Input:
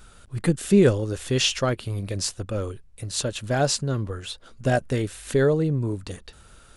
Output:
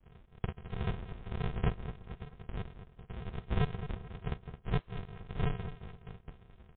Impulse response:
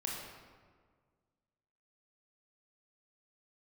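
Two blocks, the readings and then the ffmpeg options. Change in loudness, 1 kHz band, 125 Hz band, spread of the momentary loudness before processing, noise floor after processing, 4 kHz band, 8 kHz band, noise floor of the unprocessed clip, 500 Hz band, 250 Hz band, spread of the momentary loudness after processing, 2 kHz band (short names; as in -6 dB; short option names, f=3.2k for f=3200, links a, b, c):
-15.0 dB, -12.0 dB, -11.0 dB, 15 LU, -63 dBFS, -23.0 dB, under -40 dB, -51 dBFS, -21.0 dB, -17.5 dB, 16 LU, -15.5 dB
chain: -filter_complex "[0:a]highpass=f=740:w=0.5412,highpass=f=740:w=1.3066,deesser=0.75,bandreject=f=1.8k:w=5.4,aresample=11025,acrusher=samples=38:mix=1:aa=0.000001,aresample=44100,aeval=exprs='0.0891*(abs(mod(val(0)/0.0891+3,4)-2)-1)':c=same,asplit=2[a][b];[b]adelay=217,lowpass=f=2.9k:p=1,volume=-11dB,asplit=2[c][d];[d]adelay=217,lowpass=f=2.9k:p=1,volume=0.4,asplit=2[e][f];[f]adelay=217,lowpass=f=2.9k:p=1,volume=0.4,asplit=2[g][h];[h]adelay=217,lowpass=f=2.9k:p=1,volume=0.4[i];[c][e][g][i]amix=inputs=4:normalize=0[j];[a][j]amix=inputs=2:normalize=0,volume=1.5dB" -ar 8000 -c:a libmp3lame -b:a 32k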